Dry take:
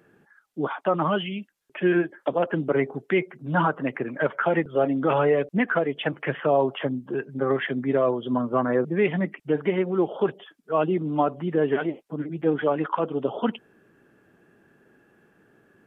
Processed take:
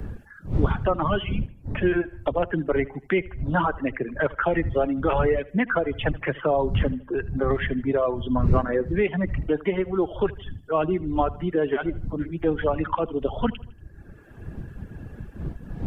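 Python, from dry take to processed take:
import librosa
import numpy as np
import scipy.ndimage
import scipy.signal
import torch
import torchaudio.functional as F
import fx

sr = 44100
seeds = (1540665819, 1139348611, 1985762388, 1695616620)

p1 = fx.dmg_wind(x, sr, seeds[0], corner_hz=99.0, level_db=-28.0)
p2 = fx.dereverb_blind(p1, sr, rt60_s=0.84)
p3 = p2 + fx.echo_feedback(p2, sr, ms=78, feedback_pct=42, wet_db=-21, dry=0)
y = fx.band_squash(p3, sr, depth_pct=40)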